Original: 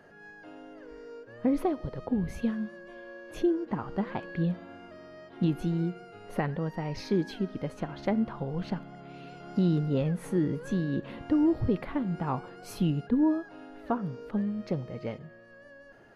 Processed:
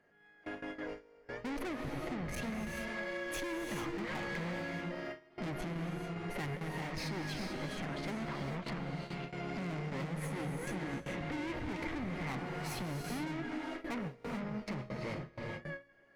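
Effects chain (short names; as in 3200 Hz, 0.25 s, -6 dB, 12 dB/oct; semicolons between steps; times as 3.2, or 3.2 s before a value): 2.34–4.7 high shelf 3400 Hz +11.5 dB; tube stage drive 42 dB, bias 0.65; non-linear reverb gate 0.47 s rising, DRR 2 dB; compressor 3:1, threshold -47 dBFS, peak gain reduction 8 dB; bell 2100 Hz +8 dB 0.38 oct; gate with hold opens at -40 dBFS; notches 60/120 Hz; gain +9 dB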